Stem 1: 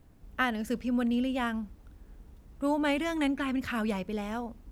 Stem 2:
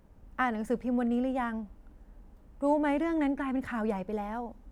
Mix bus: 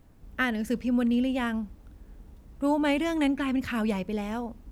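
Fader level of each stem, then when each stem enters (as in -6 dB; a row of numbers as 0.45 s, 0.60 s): +1.5 dB, -7.5 dB; 0.00 s, 0.00 s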